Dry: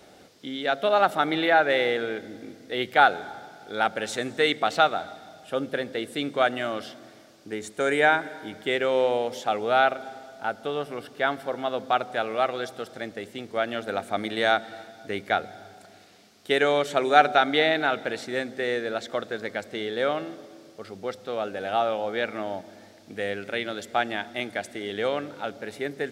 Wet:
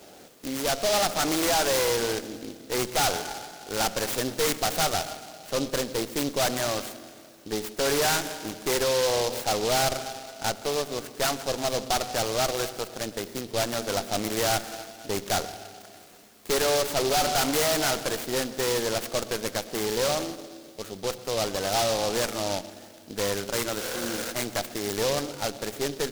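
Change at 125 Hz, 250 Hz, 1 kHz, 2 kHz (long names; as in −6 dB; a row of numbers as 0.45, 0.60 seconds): +6.0, 0.0, −4.5, −5.5 decibels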